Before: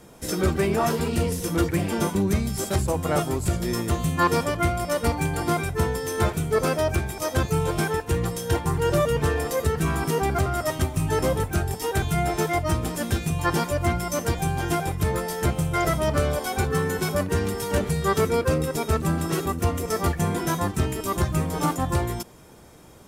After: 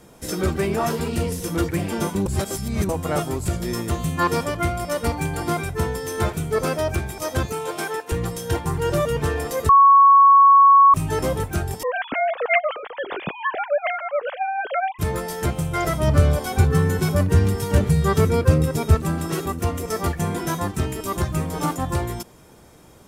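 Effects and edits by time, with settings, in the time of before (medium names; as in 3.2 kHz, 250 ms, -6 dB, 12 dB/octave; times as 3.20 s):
2.26–2.89 s: reverse
7.52–8.12 s: high-pass 370 Hz
9.69–10.94 s: bleep 1.11 kHz -8 dBFS
11.83–14.99 s: formants replaced by sine waves
16.00–18.95 s: peaking EQ 100 Hz +11.5 dB 1.8 oct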